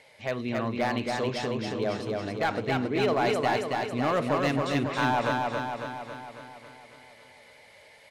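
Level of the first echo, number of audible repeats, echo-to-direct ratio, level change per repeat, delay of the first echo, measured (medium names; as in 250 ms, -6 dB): -3.0 dB, 7, -1.0 dB, -4.5 dB, 275 ms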